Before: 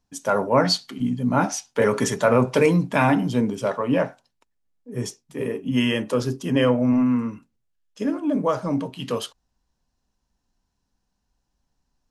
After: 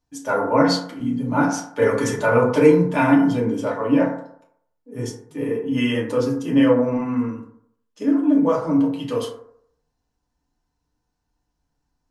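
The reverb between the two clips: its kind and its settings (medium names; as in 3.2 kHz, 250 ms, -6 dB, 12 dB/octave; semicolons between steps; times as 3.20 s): FDN reverb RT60 0.67 s, low-frequency decay 0.85×, high-frequency decay 0.35×, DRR -4.5 dB; trim -5.5 dB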